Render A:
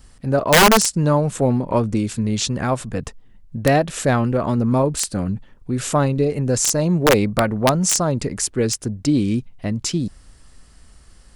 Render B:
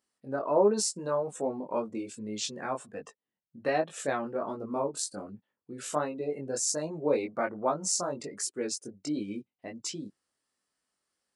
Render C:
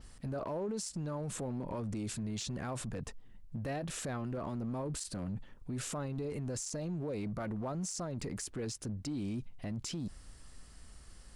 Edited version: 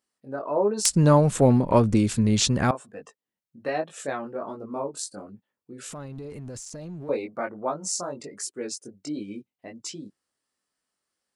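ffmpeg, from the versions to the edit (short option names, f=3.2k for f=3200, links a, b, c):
-filter_complex "[1:a]asplit=3[a][b][c];[a]atrim=end=0.852[d];[0:a]atrim=start=0.848:end=2.712[e];[b]atrim=start=2.708:end=5.902[f];[2:a]atrim=start=5.898:end=7.092[g];[c]atrim=start=7.088[h];[d][e]acrossfade=d=0.004:c1=hsin:c2=hsin[i];[i][f]acrossfade=d=0.004:c1=hsin:c2=hsin[j];[j][g]acrossfade=d=0.004:c1=hsin:c2=hsin[k];[k][h]acrossfade=d=0.004:c1=hsin:c2=hsin"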